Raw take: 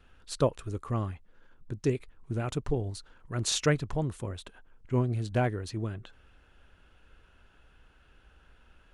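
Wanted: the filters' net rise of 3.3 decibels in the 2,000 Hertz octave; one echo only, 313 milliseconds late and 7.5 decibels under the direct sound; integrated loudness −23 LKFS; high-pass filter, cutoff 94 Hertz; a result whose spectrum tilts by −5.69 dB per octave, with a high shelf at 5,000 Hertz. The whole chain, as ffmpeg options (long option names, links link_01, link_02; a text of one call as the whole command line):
ffmpeg -i in.wav -af "highpass=94,equalizer=frequency=2000:width_type=o:gain=5.5,highshelf=frequency=5000:gain=-8,aecho=1:1:313:0.422,volume=9dB" out.wav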